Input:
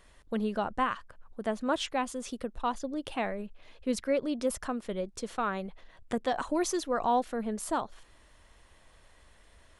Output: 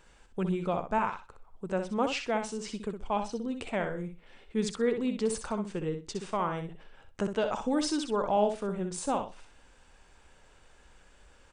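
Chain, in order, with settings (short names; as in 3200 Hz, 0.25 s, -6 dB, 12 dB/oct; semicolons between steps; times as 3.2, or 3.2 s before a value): varispeed -15%; on a send: feedback echo 63 ms, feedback 17%, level -7.5 dB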